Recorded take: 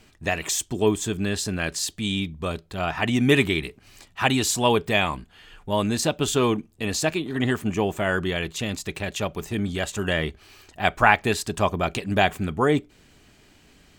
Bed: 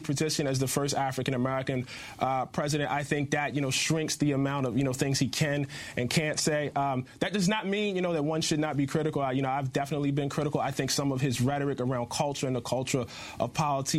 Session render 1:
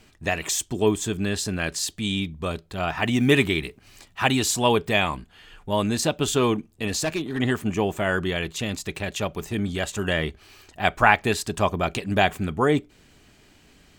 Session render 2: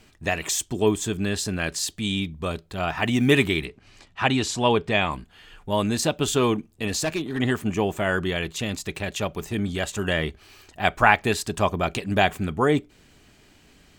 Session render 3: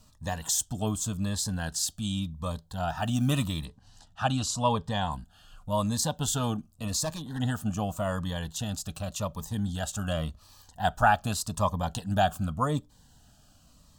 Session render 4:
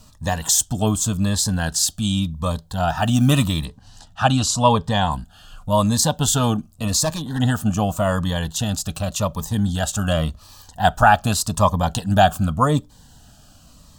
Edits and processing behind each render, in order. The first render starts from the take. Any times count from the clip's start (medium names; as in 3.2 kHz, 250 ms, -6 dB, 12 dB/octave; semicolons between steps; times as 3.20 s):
2.89–4.58 s: companded quantiser 8-bit; 6.88–7.39 s: hard clipper -20.5 dBFS
3.65–5.11 s: distance through air 74 m
static phaser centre 910 Hz, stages 4; Shepard-style phaser falling 0.87 Hz
trim +10 dB; peak limiter -2 dBFS, peak gain reduction 3 dB